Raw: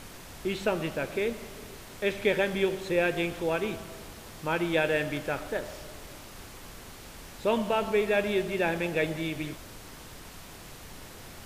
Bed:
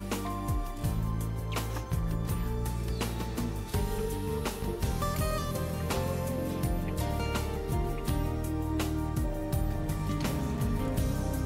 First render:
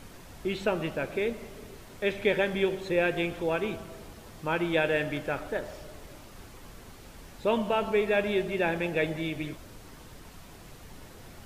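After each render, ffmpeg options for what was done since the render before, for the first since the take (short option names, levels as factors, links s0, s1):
-af "afftdn=nr=6:nf=-46"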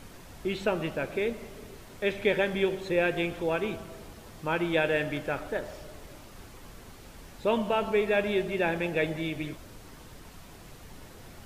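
-af anull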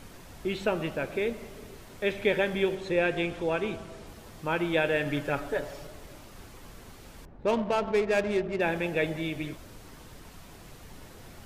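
-filter_complex "[0:a]asettb=1/sr,asplit=3[s0][s1][s2];[s0]atrim=end=2.754[s3];[s1]atrim=start=2.75:end=4.07,asetpts=PTS-STARTPTS,afade=t=in:d=0.004:c=qsin,afade=t=out:st=1.316:d=0.004:c=qsin,lowpass=9700[s4];[s2]atrim=start=4.066[s5];[s3][s4]acrossfade=d=0.004:c1=hsin:c2=qsin[s6];[s6][s5]acrossfade=d=0.004:c1=qsin:c2=hsin,asettb=1/sr,asplit=3[s7][s8][s9];[s7]atrim=end=5.054[s10];[s8]atrim=start=5.05:end=5.87,asetpts=PTS-STARTPTS,afade=t=in:d=0.004:c=qsin,afade=t=out:st=0.816:d=0.004:c=qsin,aecho=1:1:7.1:0.65,atrim=end_sample=36162[s11];[s9]atrim=start=5.866[s12];[s10][s11]acrossfade=d=0.004:c1=hsin:c2=qsin[s13];[s13][s12]acrossfade=d=0.004:c1=qsin:c2=hsin,asettb=1/sr,asplit=3[s14][s15][s16];[s14]atrim=end=7.254[s17];[s15]atrim=start=7.25:end=8.61,asetpts=PTS-STARTPTS,afade=t=in:d=0.004:c=qsin,afade=t=out:st=1.356:d=0.004:c=qsin,adynamicsmooth=sensitivity=4:basefreq=780[s18];[s16]atrim=start=8.606[s19];[s17][s18]acrossfade=d=0.004:c1=hsin:c2=qsin[s20];[s20][s19]acrossfade=d=0.004:c1=qsin:c2=hsin"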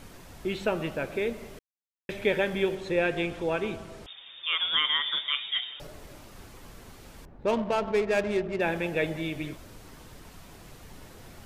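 -filter_complex "[0:a]asettb=1/sr,asplit=3[s0][s1][s2];[s0]atrim=end=4.064[s3];[s1]atrim=start=4.06:end=5.8,asetpts=PTS-STARTPTS,afade=t=in:d=0.004:c=qsin,afade=t=out:st=1.736:d=0.004:c=qsin,lowpass=f=3100:t=q:w=0.5098,lowpass=f=3100:t=q:w=0.6013,lowpass=f=3100:t=q:w=0.9,lowpass=f=3100:t=q:w=2.563,afreqshift=-3700[s4];[s2]atrim=start=5.796[s5];[s3][s4]acrossfade=d=0.004:c1=hsin:c2=qsin[s6];[s6][s5]acrossfade=d=0.004:c1=qsin:c2=hsin,asplit=3[s7][s8][s9];[s7]atrim=end=1.59,asetpts=PTS-STARTPTS,afade=t=out:st=1.586:d=0.004:c=hsin[s10];[s8]atrim=start=1.59:end=2.09,asetpts=PTS-STARTPTS,volume=0[s11];[s9]atrim=start=2.09,asetpts=PTS-STARTPTS,afade=t=in:d=0.004:c=hsin[s12];[s10][s11][s12]concat=n=3:v=0:a=1"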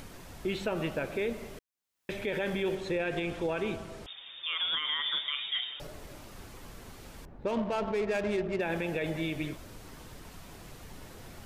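-af "alimiter=limit=0.0708:level=0:latency=1:release=38,acompressor=mode=upward:threshold=0.00562:ratio=2.5"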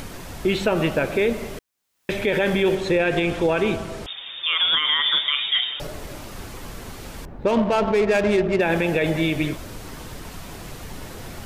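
-af "volume=3.76"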